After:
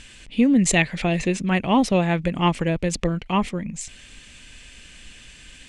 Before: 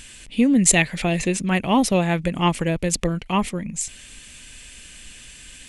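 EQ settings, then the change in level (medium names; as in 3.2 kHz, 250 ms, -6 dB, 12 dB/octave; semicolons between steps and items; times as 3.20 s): distance through air 73 m; 0.0 dB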